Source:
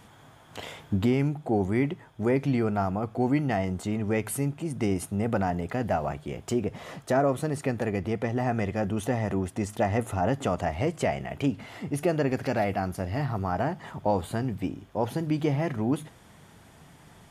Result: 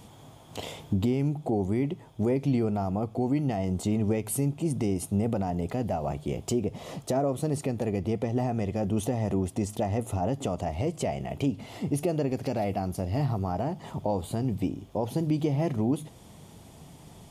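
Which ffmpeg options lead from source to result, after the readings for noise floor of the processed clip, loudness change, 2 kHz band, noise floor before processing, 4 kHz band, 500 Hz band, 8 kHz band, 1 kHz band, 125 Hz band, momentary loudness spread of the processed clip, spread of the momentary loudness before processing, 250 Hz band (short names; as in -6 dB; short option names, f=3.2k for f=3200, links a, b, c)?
-51 dBFS, -1.0 dB, -9.5 dB, -54 dBFS, -1.0 dB, -2.0 dB, +2.0 dB, -4.0 dB, +0.5 dB, 5 LU, 6 LU, 0.0 dB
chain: -af "alimiter=limit=-20.5dB:level=0:latency=1:release=277,equalizer=f=1.6k:t=o:w=1:g=-13.5,volume=4.5dB"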